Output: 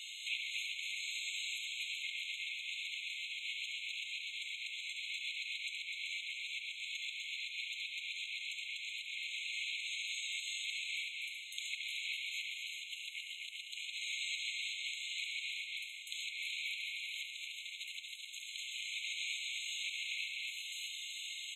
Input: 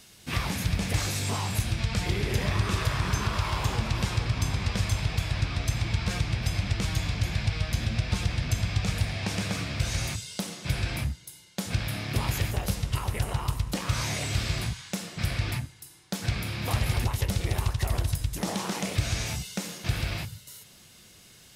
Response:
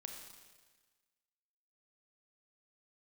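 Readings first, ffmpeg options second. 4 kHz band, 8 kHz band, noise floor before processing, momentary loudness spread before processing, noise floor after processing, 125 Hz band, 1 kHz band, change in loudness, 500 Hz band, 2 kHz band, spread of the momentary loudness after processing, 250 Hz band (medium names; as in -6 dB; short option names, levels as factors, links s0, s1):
-3.5 dB, -11.0 dB, -53 dBFS, 5 LU, -48 dBFS, under -40 dB, under -40 dB, -10.0 dB, under -40 dB, -4.0 dB, 5 LU, under -40 dB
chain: -filter_complex "[0:a]acrusher=bits=4:mode=log:mix=0:aa=0.000001,alimiter=limit=0.0841:level=0:latency=1:release=108,asplit=2[s0][s1];[s1]aecho=0:1:69.97|247.8:0.501|0.708[s2];[s0][s2]amix=inputs=2:normalize=0,acompressor=threshold=0.00708:ratio=5,lowpass=5000,asplit=2[s3][s4];[s4]aecho=0:1:379:0.473[s5];[s3][s5]amix=inputs=2:normalize=0,afftfilt=real='re*eq(mod(floor(b*sr/1024/2100),2),1)':imag='im*eq(mod(floor(b*sr/1024/2100),2),1)':win_size=1024:overlap=0.75,volume=3.98"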